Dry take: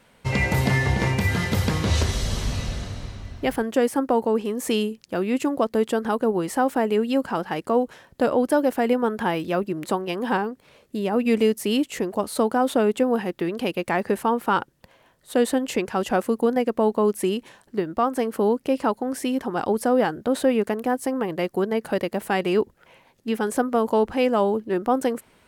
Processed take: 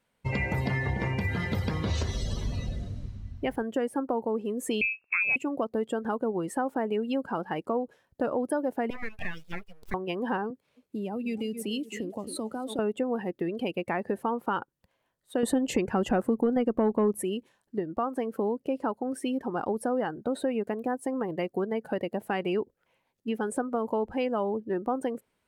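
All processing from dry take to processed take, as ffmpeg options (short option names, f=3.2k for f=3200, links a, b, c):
-filter_complex "[0:a]asettb=1/sr,asplit=3[a][b][c];[a]atrim=end=4.814[d];[b]atrim=start=4.81:end=5.36,asetpts=PTS-STARTPTS,afade=t=in:d=0.004:c=qsin,afade=t=out:st=0.546:d=0.004:c=qsin,acontrast=82,lowpass=f=2.4k:t=q:w=0.5098,lowpass=f=2.4k:t=q:w=0.6013,lowpass=f=2.4k:t=q:w=0.9,lowpass=f=2.4k:t=q:w=2.563,afreqshift=-2800[e];[c]atrim=start=5.356[f];[d][e]acrossfade=d=0.004:c1=hsin:c2=qsin[g];[g][f]acrossfade=d=0.004:c1=qsin:c2=hsin,asettb=1/sr,asplit=3[h][i][j];[h]atrim=end=8.904[k];[i]atrim=start=8.9:end=9.94,asetpts=PTS-STARTPTS,afade=t=in:d=0.004:c=qsin,afade=t=out:st=1.036:d=0.004:c=qsin,lowshelf=f=630:t=q:w=3:g=-11.5,acompressor=threshold=-25dB:ratio=2:attack=3.2:release=140:knee=1:detection=peak,aeval=exprs='abs(val(0))':c=same[l];[j]atrim=start=9.936[m];[k][l]acrossfade=d=0.004:c1=hsin:c2=qsin[n];[n][m]acrossfade=d=0.004:c1=qsin:c2=hsin,asettb=1/sr,asplit=3[o][p][q];[o]atrim=end=10.504[r];[p]atrim=start=10.5:end=12.79,asetpts=PTS-STARTPTS,afade=t=in:d=0.004:c=qsin,afade=t=out:st=2.286:d=0.004:c=qsin,highpass=54,aecho=1:1:267|534|801:0.188|0.0678|0.0244,atrim=end_sample=100989,acrossover=split=170|3000[s][t][u];[t]acompressor=threshold=-28dB:ratio=10:attack=3.2:release=140:knee=2.83:detection=peak[v];[s][v][u]amix=inputs=3:normalize=0[w];[q]atrim=start=12.786[x];[r][w]acrossfade=d=0.004:c1=hsin:c2=qsin[y];[y][x]acrossfade=d=0.004:c1=qsin:c2=hsin,asettb=1/sr,asplit=3[z][aa][ab];[z]atrim=end=15.434[ac];[aa]atrim=start=15.43:end=17.23,asetpts=PTS-STARTPTS,afade=t=in:d=0.004:c=qsin,afade=t=out:st=1.796:d=0.004:c=qsin,lowshelf=f=360:g=8.5,acontrast=65[ad];[ab]atrim=start=17.226[ae];[ac][ad]acrossfade=d=0.004:c1=hsin:c2=qsin[af];[af][ae]acrossfade=d=0.004:c1=qsin:c2=hsin,afftdn=nr=16:nf=-33,highshelf=f=8.9k:g=4,acompressor=threshold=-24dB:ratio=2.5,volume=-3dB"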